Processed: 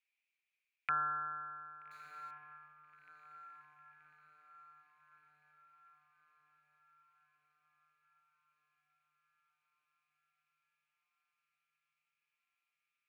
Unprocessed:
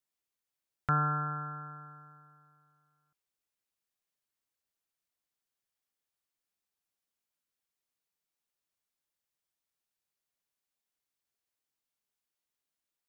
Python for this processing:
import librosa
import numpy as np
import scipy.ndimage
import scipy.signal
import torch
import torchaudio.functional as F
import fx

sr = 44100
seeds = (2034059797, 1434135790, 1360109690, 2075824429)

y = fx.bandpass_q(x, sr, hz=2400.0, q=10.0)
y = fx.power_curve(y, sr, exponent=0.5, at=(1.91, 2.31))
y = fx.echo_diffused(y, sr, ms=1260, feedback_pct=55, wet_db=-13)
y = y * librosa.db_to_amplitude(17.5)